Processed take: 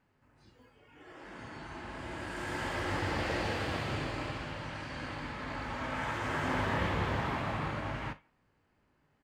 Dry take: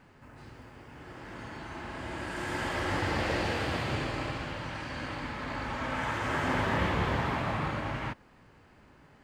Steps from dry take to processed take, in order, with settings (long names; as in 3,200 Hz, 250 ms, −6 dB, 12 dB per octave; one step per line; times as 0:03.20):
tuned comb filter 50 Hz, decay 0.3 s, mix 50%
far-end echo of a speakerphone 170 ms, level −20 dB
noise reduction from a noise print of the clip's start 12 dB